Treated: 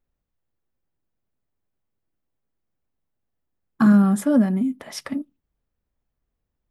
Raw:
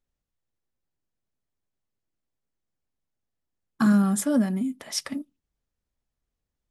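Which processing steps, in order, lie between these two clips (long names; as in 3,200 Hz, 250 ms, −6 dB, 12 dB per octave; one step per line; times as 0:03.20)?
parametric band 7,200 Hz −11.5 dB 2.4 octaves
level +5 dB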